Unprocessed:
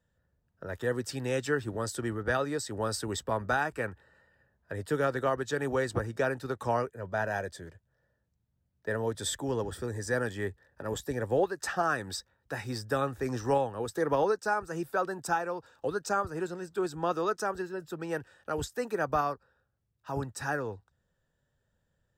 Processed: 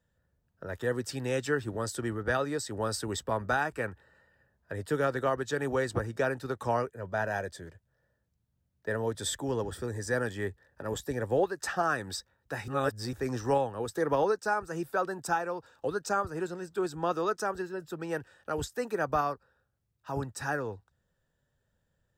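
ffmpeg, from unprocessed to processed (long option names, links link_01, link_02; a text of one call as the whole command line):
ffmpeg -i in.wav -filter_complex "[0:a]asplit=3[link_01][link_02][link_03];[link_01]atrim=end=12.682[link_04];[link_02]atrim=start=12.678:end=13.132,asetpts=PTS-STARTPTS,areverse[link_05];[link_03]atrim=start=13.128[link_06];[link_04][link_05]acrossfade=duration=0.004:curve1=hsin:curve2=hsin[link_07];[link_07][link_06]acrossfade=duration=0.004:curve1=hsin:curve2=hsin" out.wav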